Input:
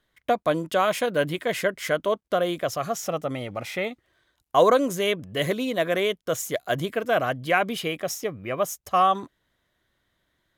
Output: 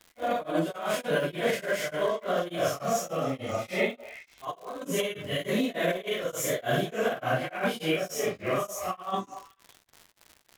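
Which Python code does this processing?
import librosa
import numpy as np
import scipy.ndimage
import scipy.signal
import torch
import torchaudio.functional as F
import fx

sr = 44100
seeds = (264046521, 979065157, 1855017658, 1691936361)

y = fx.phase_scramble(x, sr, seeds[0], window_ms=200)
y = fx.over_compress(y, sr, threshold_db=-25.0, ratio=-0.5)
y = fx.dmg_crackle(y, sr, seeds[1], per_s=180.0, level_db=-36.0)
y = fx.echo_stepped(y, sr, ms=188, hz=770.0, octaves=1.4, feedback_pct=70, wet_db=-9.0)
y = y * np.abs(np.cos(np.pi * 3.4 * np.arange(len(y)) / sr))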